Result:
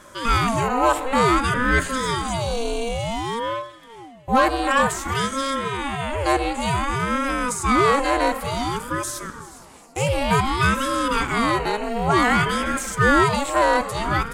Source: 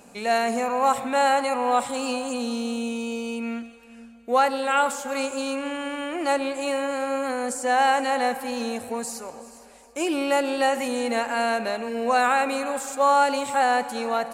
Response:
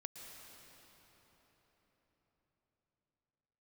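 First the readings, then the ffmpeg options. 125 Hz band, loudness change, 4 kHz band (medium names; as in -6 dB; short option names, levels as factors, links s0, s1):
no reading, +3.0 dB, +4.5 dB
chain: -af "asoftclip=type=tanh:threshold=0.237,aeval=exprs='val(0)*sin(2*PI*510*n/s+510*0.6/0.55*sin(2*PI*0.55*n/s))':c=same,volume=2.24"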